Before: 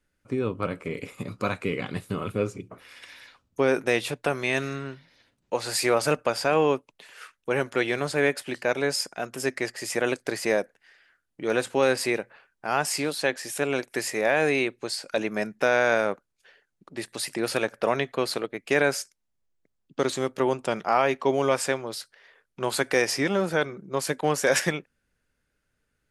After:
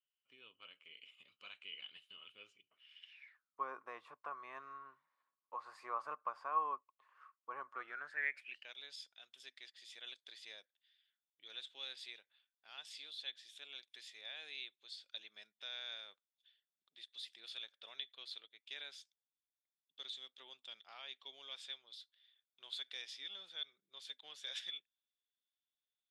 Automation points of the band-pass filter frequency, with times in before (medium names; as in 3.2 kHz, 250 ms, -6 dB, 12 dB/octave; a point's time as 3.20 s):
band-pass filter, Q 17
3.09 s 3 kHz
3.60 s 1.1 kHz
7.72 s 1.1 kHz
8.77 s 3.5 kHz